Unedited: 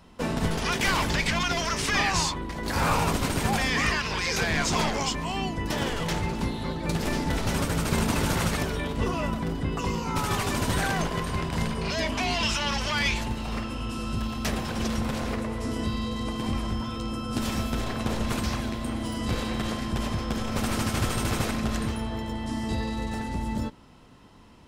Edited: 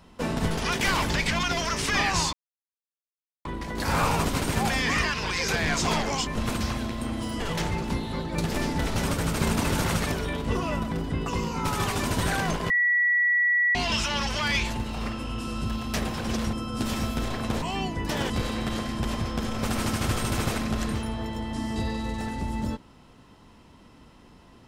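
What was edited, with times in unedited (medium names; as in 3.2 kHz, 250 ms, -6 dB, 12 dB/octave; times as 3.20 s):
2.33 s: insert silence 1.12 s
5.23–5.91 s: swap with 18.18–19.23 s
11.21–12.26 s: bleep 1.94 kHz -19 dBFS
15.04–17.09 s: delete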